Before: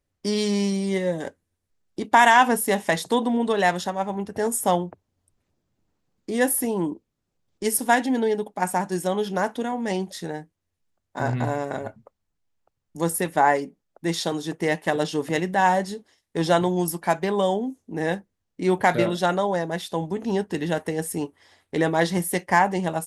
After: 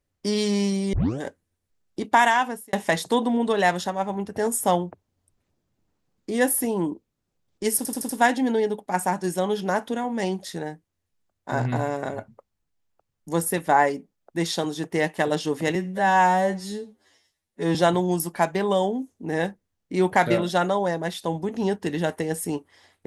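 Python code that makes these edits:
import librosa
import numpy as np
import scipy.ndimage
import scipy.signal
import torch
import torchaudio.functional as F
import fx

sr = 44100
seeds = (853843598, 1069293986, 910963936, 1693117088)

y = fx.edit(x, sr, fx.tape_start(start_s=0.93, length_s=0.27),
    fx.fade_out_span(start_s=2.04, length_s=0.69),
    fx.stutter(start_s=7.77, slice_s=0.08, count=5),
    fx.stretch_span(start_s=15.43, length_s=1.0, factor=2.0), tone=tone)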